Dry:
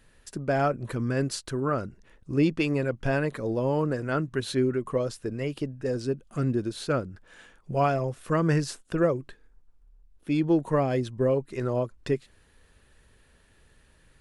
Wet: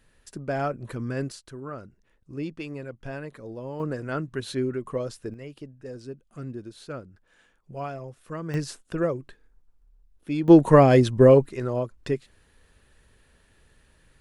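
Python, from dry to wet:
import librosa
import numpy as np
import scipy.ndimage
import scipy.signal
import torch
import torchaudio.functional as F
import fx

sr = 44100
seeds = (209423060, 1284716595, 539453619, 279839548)

y = fx.gain(x, sr, db=fx.steps((0.0, -3.0), (1.32, -10.0), (3.8, -2.5), (5.34, -10.0), (8.54, -2.0), (10.48, 10.0), (11.49, 0.0)))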